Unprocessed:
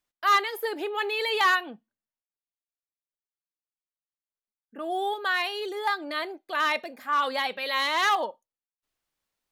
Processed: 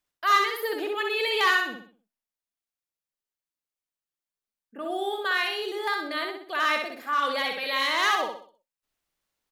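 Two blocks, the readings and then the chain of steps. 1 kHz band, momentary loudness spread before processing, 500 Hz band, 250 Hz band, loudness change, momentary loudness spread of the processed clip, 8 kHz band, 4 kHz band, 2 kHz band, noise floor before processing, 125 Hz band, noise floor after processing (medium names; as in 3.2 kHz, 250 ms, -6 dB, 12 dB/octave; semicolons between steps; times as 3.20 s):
-0.5 dB, 9 LU, +1.0 dB, +1.5 dB, +0.5 dB, 10 LU, +1.5 dB, +1.5 dB, +1.5 dB, under -85 dBFS, no reading, under -85 dBFS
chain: dynamic bell 830 Hz, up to -6 dB, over -39 dBFS, Q 2.9; on a send: feedback delay 63 ms, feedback 39%, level -4 dB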